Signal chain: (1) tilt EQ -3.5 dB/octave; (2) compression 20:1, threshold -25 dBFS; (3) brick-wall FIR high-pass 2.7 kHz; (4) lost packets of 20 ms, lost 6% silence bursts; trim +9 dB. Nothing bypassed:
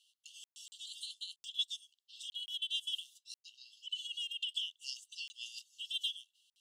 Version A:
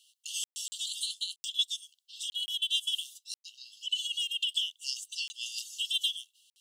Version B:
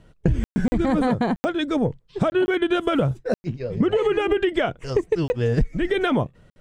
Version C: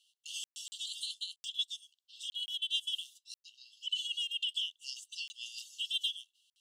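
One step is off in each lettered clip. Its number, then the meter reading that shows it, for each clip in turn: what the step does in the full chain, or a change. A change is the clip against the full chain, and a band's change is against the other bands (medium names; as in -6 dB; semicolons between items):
1, loudness change +7.5 LU; 3, crest factor change -4.5 dB; 2, mean gain reduction 4.0 dB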